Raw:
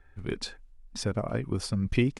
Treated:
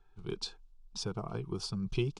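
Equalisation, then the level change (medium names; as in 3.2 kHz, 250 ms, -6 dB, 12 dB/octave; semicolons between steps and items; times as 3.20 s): low-pass 4.3 kHz 12 dB/octave; treble shelf 2.8 kHz +11 dB; static phaser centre 380 Hz, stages 8; -4.0 dB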